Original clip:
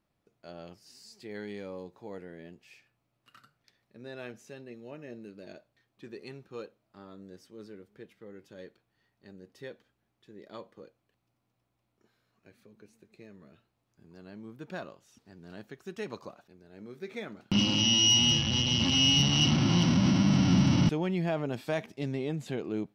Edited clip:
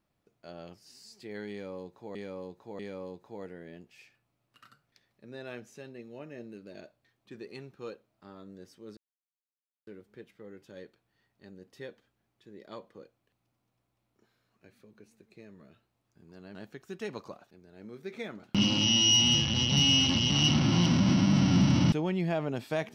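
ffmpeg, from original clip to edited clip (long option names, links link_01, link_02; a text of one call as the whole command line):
ffmpeg -i in.wav -filter_complex "[0:a]asplit=7[link_01][link_02][link_03][link_04][link_05][link_06][link_07];[link_01]atrim=end=2.152[link_08];[link_02]atrim=start=1.508:end=2.152[link_09];[link_03]atrim=start=1.508:end=7.69,asetpts=PTS-STARTPTS,afade=type=out:start_time=6.178:duration=0.004:curve=hsin,apad=pad_dur=0.9[link_10];[link_04]atrim=start=7.69:end=14.372,asetpts=PTS-STARTPTS,afade=type=in:duration=0.004:curve=hsin[link_11];[link_05]atrim=start=15.518:end=18.692[link_12];[link_06]atrim=start=18.688:end=19.272,asetpts=PTS-STARTPTS,areverse[link_13];[link_07]atrim=start=19.268[link_14];[link_08][link_09]acrossfade=duration=0.004:curve1=hsin:curve2=hsin[link_15];[link_10][link_11]concat=n=2:v=0:a=1[link_16];[link_15][link_16]acrossfade=duration=0.004:curve1=hsin:curve2=hsin[link_17];[link_17][link_12]acrossfade=duration=0.004:curve1=hsin:curve2=hsin[link_18];[link_18][link_13]acrossfade=duration=0.004:curve1=hsin:curve2=hsin[link_19];[link_19][link_14]acrossfade=duration=0.004:curve1=hsin:curve2=hsin" out.wav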